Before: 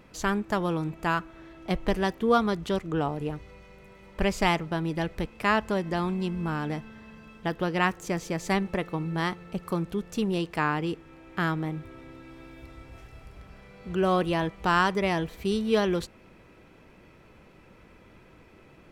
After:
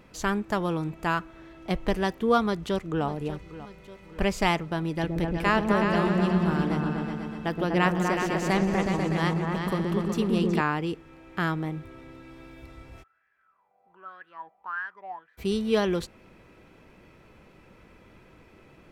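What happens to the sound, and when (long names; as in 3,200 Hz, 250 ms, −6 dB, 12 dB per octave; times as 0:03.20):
0:02.41–0:03.06: delay throw 590 ms, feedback 55%, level −15 dB
0:04.91–0:10.61: echo whose low-pass opens from repeat to repeat 123 ms, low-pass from 400 Hz, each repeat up 2 octaves, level 0 dB
0:13.02–0:15.37: LFO wah 0.77 Hz → 2.4 Hz 730–1,700 Hz, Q 14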